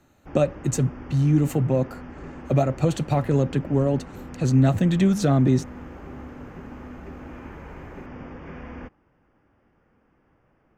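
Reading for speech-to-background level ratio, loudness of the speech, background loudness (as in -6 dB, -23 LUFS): 18.0 dB, -22.5 LUFS, -40.5 LUFS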